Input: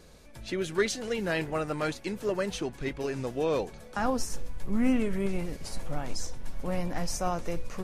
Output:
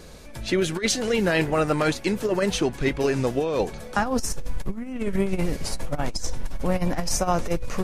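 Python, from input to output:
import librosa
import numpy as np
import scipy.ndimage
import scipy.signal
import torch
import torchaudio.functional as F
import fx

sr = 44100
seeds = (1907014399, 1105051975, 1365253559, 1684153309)

y = fx.over_compress(x, sr, threshold_db=-29.0, ratio=-0.5)
y = y * librosa.db_to_amplitude(7.5)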